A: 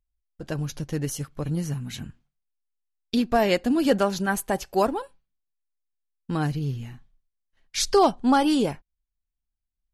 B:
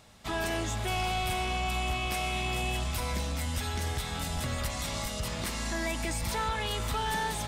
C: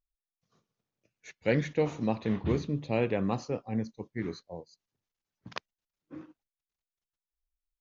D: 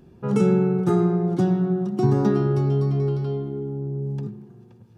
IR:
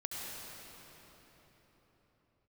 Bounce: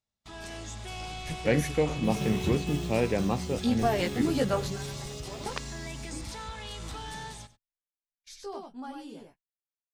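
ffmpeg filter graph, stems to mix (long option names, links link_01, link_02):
-filter_complex "[0:a]flanger=delay=15.5:depth=2.4:speed=1.8,adelay=500,volume=-3.5dB,asplit=2[link_01][link_02];[link_02]volume=-21dB[link_03];[1:a]lowpass=6400,bass=frequency=250:gain=3,treble=frequency=4000:gain=10,dynaudnorm=framelen=250:gausssize=3:maxgain=5dB,volume=-15dB,asplit=2[link_04][link_05];[link_05]volume=-17dB[link_06];[2:a]volume=1.5dB,asplit=2[link_07][link_08];[3:a]acrusher=samples=15:mix=1:aa=0.000001,adelay=1800,volume=-17dB[link_09];[link_08]apad=whole_len=459989[link_10];[link_01][link_10]sidechaingate=range=-17dB:threshold=-56dB:ratio=16:detection=peak[link_11];[link_03][link_06]amix=inputs=2:normalize=0,aecho=0:1:95:1[link_12];[link_11][link_04][link_07][link_09][link_12]amix=inputs=5:normalize=0,agate=range=-22dB:threshold=-56dB:ratio=16:detection=peak"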